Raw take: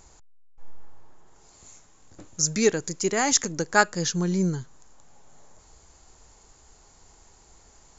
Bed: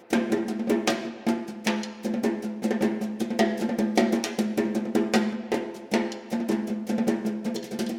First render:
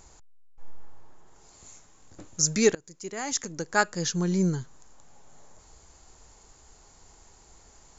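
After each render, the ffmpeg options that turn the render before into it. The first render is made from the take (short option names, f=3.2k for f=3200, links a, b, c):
-filter_complex "[0:a]asplit=2[a][b];[a]atrim=end=2.75,asetpts=PTS-STARTPTS,afade=t=out:st=2.746:d=0.004:c=hsin:silence=0.0707946[c];[b]atrim=start=2.75,asetpts=PTS-STARTPTS,afade=t=in:d=1.73:silence=0.0707946[d];[c][d]concat=n=2:v=0:a=1"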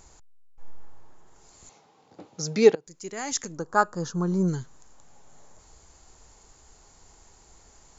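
-filter_complex "[0:a]asettb=1/sr,asplit=3[a][b][c];[a]atrim=end=1.694[d];[b]atrim=start=1.69:end=2.87,asetpts=PTS-STARTPTS,afade=t=in:d=0.004:c=qsin,afade=t=out:st=1.176:d=0.004:c=qsin,highpass=f=130:w=0.5412,highpass=f=130:w=1.3066,equalizer=f=460:t=q:w=4:g=7,equalizer=f=800:t=q:w=4:g=9,equalizer=f=1.7k:t=q:w=4:g=-5,lowpass=f=4.8k:w=0.5412,lowpass=f=4.8k:w=1.3066[e];[c]atrim=start=2.866[f];[d][e]acrossfade=d=0.004:c1=hsin:c2=qsin[g];[g][f]acrossfade=d=0.004:c1=qsin:c2=hsin,asplit=3[h][i][j];[h]afade=t=out:st=3.56:d=0.02[k];[i]highshelf=f=1.6k:t=q:w=3:g=-9.5,afade=t=in:st=3.56:d=0.02,afade=t=out:st=4.47:d=0.02[l];[j]afade=t=in:st=4.47:d=0.02[m];[k][l][m]amix=inputs=3:normalize=0"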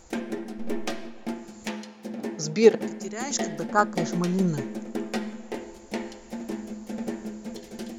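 -filter_complex "[1:a]volume=-7.5dB[a];[0:a][a]amix=inputs=2:normalize=0"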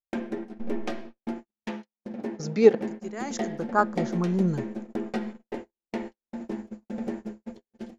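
-af "lowpass=f=1.9k:p=1,agate=range=-55dB:threshold=-35dB:ratio=16:detection=peak"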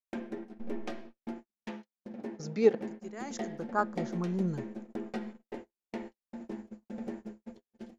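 -af "volume=-7dB"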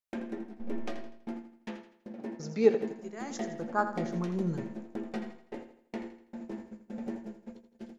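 -filter_complex "[0:a]asplit=2[a][b];[b]adelay=18,volume=-12.5dB[c];[a][c]amix=inputs=2:normalize=0,aecho=1:1:82|164|246|328:0.299|0.125|0.0527|0.0221"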